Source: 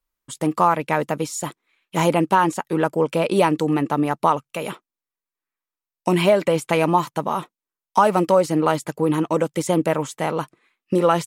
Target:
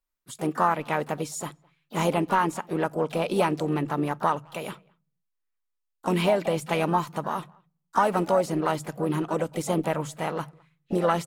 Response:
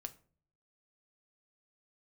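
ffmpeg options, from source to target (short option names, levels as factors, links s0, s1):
-filter_complex "[0:a]asplit=4[s0][s1][s2][s3];[s1]asetrate=52444,aresample=44100,atempo=0.840896,volume=0.178[s4];[s2]asetrate=55563,aresample=44100,atempo=0.793701,volume=0.2[s5];[s3]asetrate=66075,aresample=44100,atempo=0.66742,volume=0.158[s6];[s0][s4][s5][s6]amix=inputs=4:normalize=0,asplit=2[s7][s8];[s8]adelay=210,highpass=300,lowpass=3400,asoftclip=type=hard:threshold=0.251,volume=0.0398[s9];[s7][s9]amix=inputs=2:normalize=0,asplit=2[s10][s11];[s11]asubboost=boost=9.5:cutoff=130[s12];[1:a]atrim=start_sample=2205[s13];[s12][s13]afir=irnorm=-1:irlink=0,volume=0.398[s14];[s10][s14]amix=inputs=2:normalize=0,volume=0.398"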